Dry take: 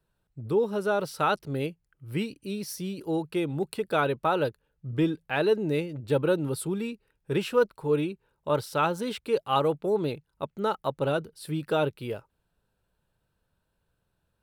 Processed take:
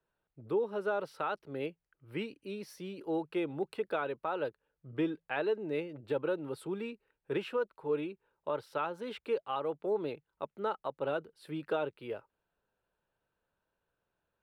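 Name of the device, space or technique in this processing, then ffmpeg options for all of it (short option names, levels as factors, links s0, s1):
DJ mixer with the lows and highs turned down: -filter_complex "[0:a]acrossover=split=280 3300:gain=0.251 1 0.178[s0][s1][s2];[s0][s1][s2]amix=inputs=3:normalize=0,alimiter=limit=0.1:level=0:latency=1:release=422,volume=0.708"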